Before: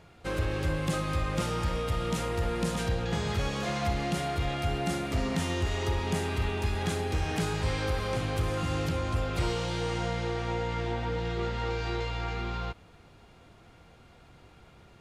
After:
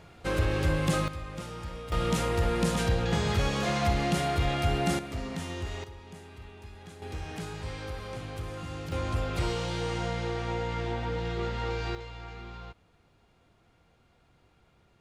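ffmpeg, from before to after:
-af "asetnsamples=n=441:p=0,asendcmd='1.08 volume volume -9dB;1.92 volume volume 3dB;4.99 volume volume -6dB;5.84 volume volume -17dB;7.02 volume volume -8dB;8.92 volume volume -0.5dB;11.95 volume volume -9.5dB',volume=3dB"

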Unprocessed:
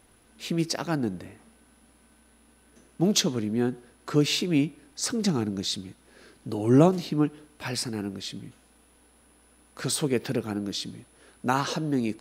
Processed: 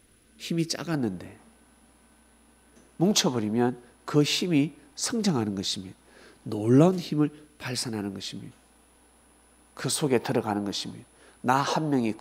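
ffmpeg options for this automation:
-af "asetnsamples=n=441:p=0,asendcmd='0.94 equalizer g 3;3.11 equalizer g 12;3.7 equalizer g 4;6.53 equalizer g -4;7.76 equalizer g 3.5;10.06 equalizer g 14.5;10.93 equalizer g 3.5;11.67 equalizer g 13.5',equalizer=f=860:t=o:w=0.9:g=-9"

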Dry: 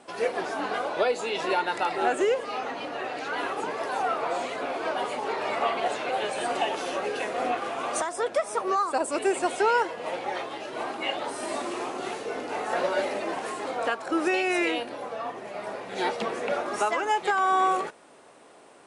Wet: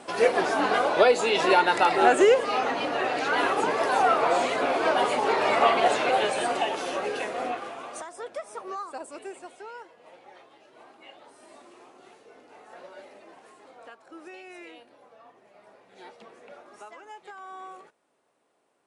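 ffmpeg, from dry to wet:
-af "volume=6dB,afade=t=out:st=6.05:d=0.55:silence=0.501187,afade=t=out:st=7.13:d=0.78:silence=0.316228,afade=t=out:st=8.8:d=0.76:silence=0.334965"

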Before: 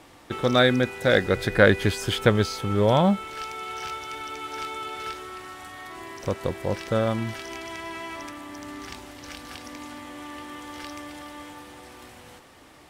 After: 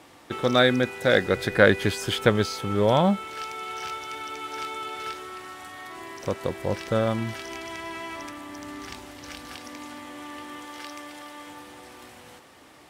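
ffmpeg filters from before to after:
-af "asetnsamples=n=441:p=0,asendcmd='6.59 highpass f 42;9.54 highpass f 130;10.65 highpass f 340;11.47 highpass f 120',highpass=f=120:p=1"

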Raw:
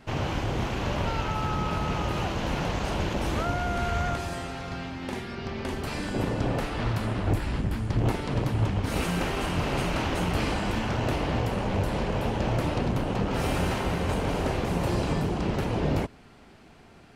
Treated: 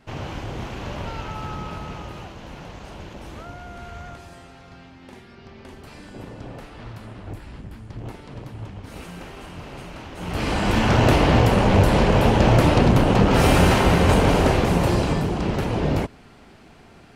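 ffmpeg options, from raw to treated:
-af "volume=18dB,afade=t=out:st=1.5:d=0.85:silence=0.446684,afade=t=in:st=10.16:d=0.26:silence=0.251189,afade=t=in:st=10.42:d=0.53:silence=0.354813,afade=t=out:st=14.18:d=1.05:silence=0.446684"

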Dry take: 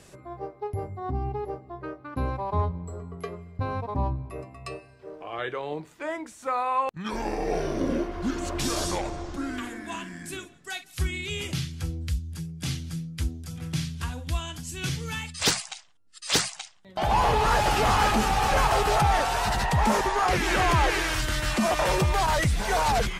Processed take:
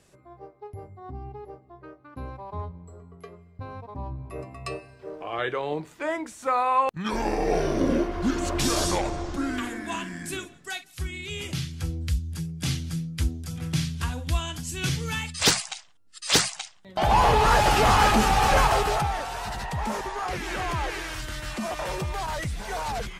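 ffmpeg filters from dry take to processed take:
-af "volume=11.5dB,afade=t=in:st=4.06:d=0.46:silence=0.251189,afade=t=out:st=10.56:d=0.44:silence=0.375837,afade=t=in:st=11:d=1.28:silence=0.398107,afade=t=out:st=18.55:d=0.59:silence=0.316228"

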